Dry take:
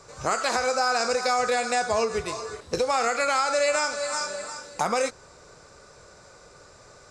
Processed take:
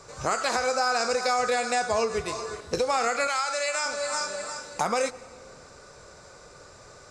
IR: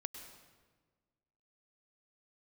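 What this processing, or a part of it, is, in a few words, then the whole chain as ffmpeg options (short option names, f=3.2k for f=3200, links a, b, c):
ducked reverb: -filter_complex "[0:a]asplit=3[a][b][c];[1:a]atrim=start_sample=2205[d];[b][d]afir=irnorm=-1:irlink=0[e];[c]apad=whole_len=313294[f];[e][f]sidechaincompress=threshold=-28dB:ratio=8:attack=6.4:release=747,volume=-1.5dB[g];[a][g]amix=inputs=2:normalize=0,asettb=1/sr,asplit=3[h][i][j];[h]atrim=end=3.274[k];[i]atrim=start=3.27:end=3.86,asetpts=PTS-STARTPTS,afade=t=in:d=0.004:c=qsin,afade=t=out:st=0.586:d=0.004:c=qsin,highpass=f=1.1k:p=1[l];[j]atrim=start=3.856[m];[k][l]acrossfade=d=0.004:c1=hsin:c2=qsin[n];[n][m]acrossfade=d=0.004:c1=qsin:c2=hsin,volume=-2.5dB"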